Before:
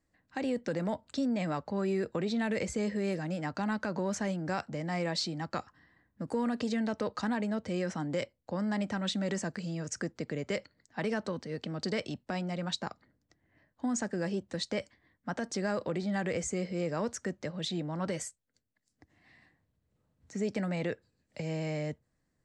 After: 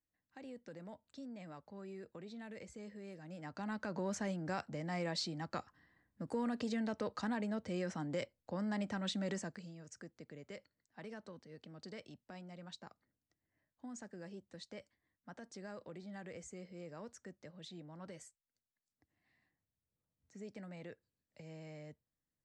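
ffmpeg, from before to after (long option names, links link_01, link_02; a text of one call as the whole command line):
ffmpeg -i in.wav -af "volume=-6dB,afade=type=in:start_time=3.18:duration=0.86:silence=0.251189,afade=type=out:start_time=9.3:duration=0.44:silence=0.298538" out.wav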